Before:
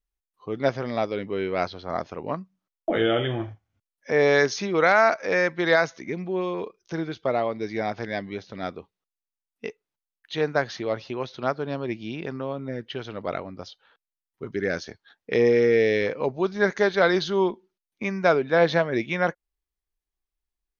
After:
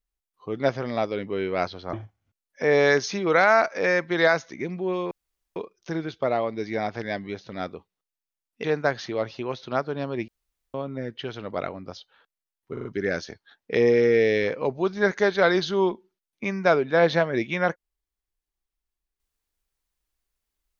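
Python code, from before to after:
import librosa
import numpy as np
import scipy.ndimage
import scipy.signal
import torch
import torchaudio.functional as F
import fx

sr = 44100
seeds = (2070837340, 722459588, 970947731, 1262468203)

y = fx.edit(x, sr, fx.cut(start_s=1.93, length_s=1.48),
    fx.insert_room_tone(at_s=6.59, length_s=0.45),
    fx.cut(start_s=9.67, length_s=0.68),
    fx.room_tone_fill(start_s=11.99, length_s=0.46),
    fx.stutter(start_s=14.44, slice_s=0.04, count=4), tone=tone)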